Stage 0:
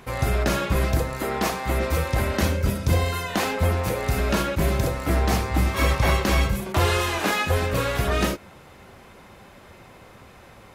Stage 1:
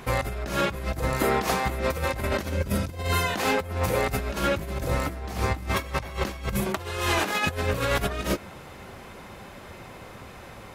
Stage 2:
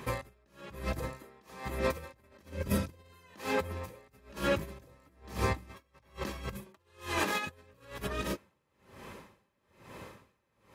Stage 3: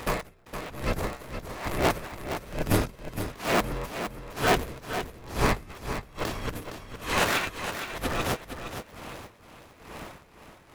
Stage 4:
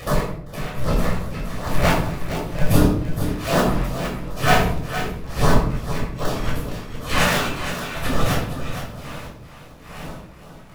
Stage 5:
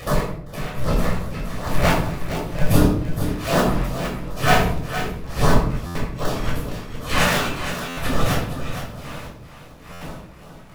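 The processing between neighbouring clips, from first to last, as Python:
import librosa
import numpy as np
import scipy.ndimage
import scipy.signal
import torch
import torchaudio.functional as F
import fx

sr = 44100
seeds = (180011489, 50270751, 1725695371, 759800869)

y1 = fx.over_compress(x, sr, threshold_db=-26.0, ratio=-0.5)
y2 = fx.notch_comb(y1, sr, f0_hz=720.0)
y2 = y2 * 10.0 ** (-32 * (0.5 - 0.5 * np.cos(2.0 * np.pi * 1.1 * np.arange(len(y2)) / sr)) / 20.0)
y2 = y2 * 10.0 ** (-2.0 / 20.0)
y3 = fx.cycle_switch(y2, sr, every=2, mode='inverted')
y3 = fx.echo_feedback(y3, sr, ms=464, feedback_pct=29, wet_db=-9.0)
y3 = y3 * 10.0 ** (6.5 / 20.0)
y4 = fx.filter_lfo_notch(y3, sr, shape='sine', hz=2.6, low_hz=290.0, high_hz=2500.0, q=1.3)
y4 = fx.room_shoebox(y4, sr, seeds[0], volume_m3=990.0, walls='furnished', distance_m=6.0)
y5 = fx.buffer_glitch(y4, sr, at_s=(5.86, 7.88, 9.92), block=512, repeats=7)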